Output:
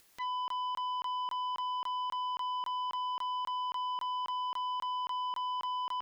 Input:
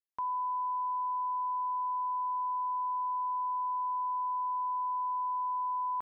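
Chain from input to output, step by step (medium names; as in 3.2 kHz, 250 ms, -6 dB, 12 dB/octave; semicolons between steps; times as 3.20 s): upward compressor, threshold -40 dBFS; crackling interface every 0.27 s, samples 1024, zero, from 0.48 s; transformer saturation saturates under 1.9 kHz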